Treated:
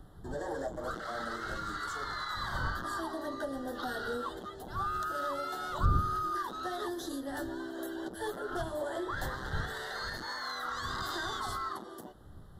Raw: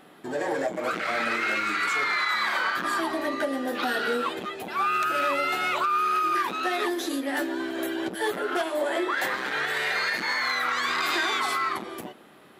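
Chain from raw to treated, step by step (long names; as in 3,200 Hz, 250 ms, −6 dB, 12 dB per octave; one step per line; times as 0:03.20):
wind on the microphone 110 Hz −33 dBFS
Butterworth band-reject 2,400 Hz, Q 1.4
level −9 dB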